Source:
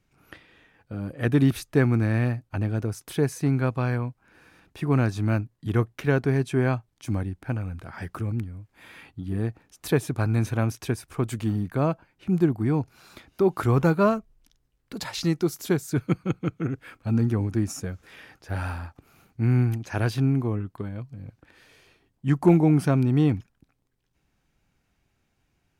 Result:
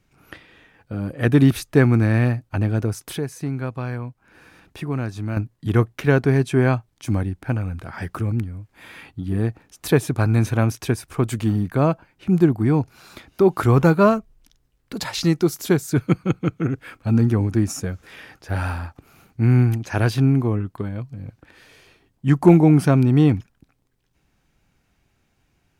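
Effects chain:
0:03.17–0:05.37: downward compressor 1.5 to 1, threshold −44 dBFS, peak gain reduction 9.5 dB
level +5.5 dB

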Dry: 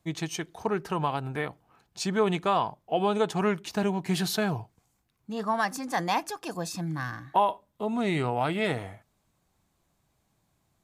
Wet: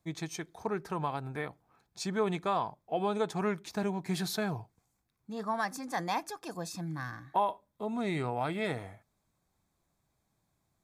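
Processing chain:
notch filter 2,900 Hz, Q 6
level −5.5 dB

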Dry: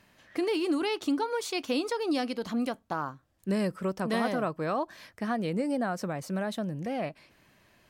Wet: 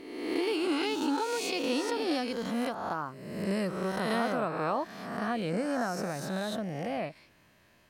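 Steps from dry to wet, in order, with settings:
peak hold with a rise ahead of every peak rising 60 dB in 1.19 s
level −3.5 dB

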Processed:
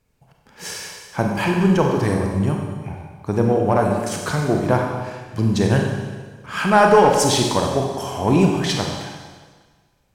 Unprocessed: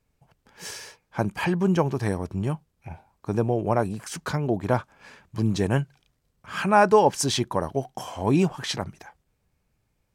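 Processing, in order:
in parallel at −3 dB: asymmetric clip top −25 dBFS
on the sum: four-comb reverb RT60 1.5 s, combs from 31 ms, DRR 1 dB

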